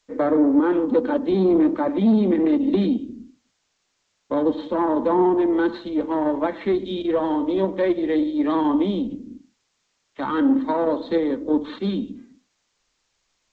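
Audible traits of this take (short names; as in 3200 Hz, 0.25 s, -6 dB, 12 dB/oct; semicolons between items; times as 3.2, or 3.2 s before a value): tremolo saw up 1.7 Hz, depth 30%; a quantiser's noise floor 12-bit, dither triangular; G.722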